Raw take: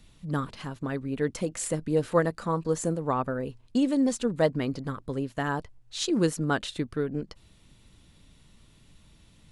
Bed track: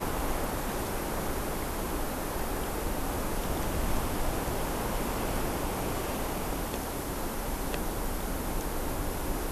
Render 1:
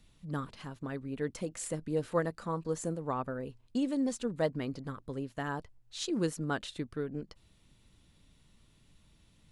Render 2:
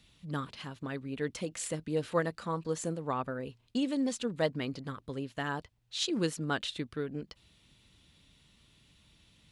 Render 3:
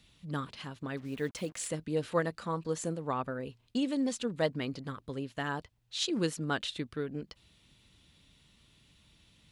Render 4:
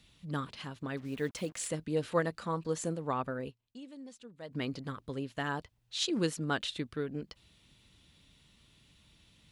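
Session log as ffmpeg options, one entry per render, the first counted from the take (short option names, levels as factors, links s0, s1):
-af "volume=0.447"
-af "highpass=43,equalizer=f=3200:t=o:w=1.6:g=7.5"
-filter_complex "[0:a]asettb=1/sr,asplit=3[s0][s1][s2];[s0]atrim=end=0.974[s3];[s1]atrim=start=0.97:end=1.68,asetpts=PTS-STARTPTS,afade=t=in:d=0.004:c=qsin,afade=t=out:st=0.706:d=0.004:c=qsin,acrusher=bits=8:mix=0:aa=0.5[s4];[s2]atrim=start=1.676[s5];[s3][s4]acrossfade=d=0.004:c1=hsin:c2=qsin[s6];[s6][s5]acrossfade=d=0.004:c1=qsin:c2=hsin"
-filter_complex "[0:a]asplit=3[s0][s1][s2];[s0]atrim=end=3.7,asetpts=PTS-STARTPTS,afade=t=out:st=3.49:d=0.21:c=exp:silence=0.141254[s3];[s1]atrim=start=3.7:end=4.32,asetpts=PTS-STARTPTS,volume=0.141[s4];[s2]atrim=start=4.32,asetpts=PTS-STARTPTS,afade=t=in:d=0.21:c=exp:silence=0.141254[s5];[s3][s4][s5]concat=n=3:v=0:a=1"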